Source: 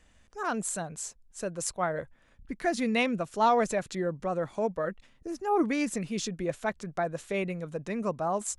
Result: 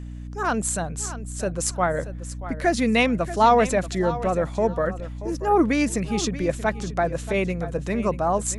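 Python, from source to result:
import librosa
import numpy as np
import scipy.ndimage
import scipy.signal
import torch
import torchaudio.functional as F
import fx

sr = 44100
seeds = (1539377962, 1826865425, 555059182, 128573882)

y = fx.add_hum(x, sr, base_hz=60, snr_db=11)
y = fx.echo_feedback(y, sr, ms=632, feedback_pct=21, wet_db=-14.0)
y = F.gain(torch.from_numpy(y), 7.0).numpy()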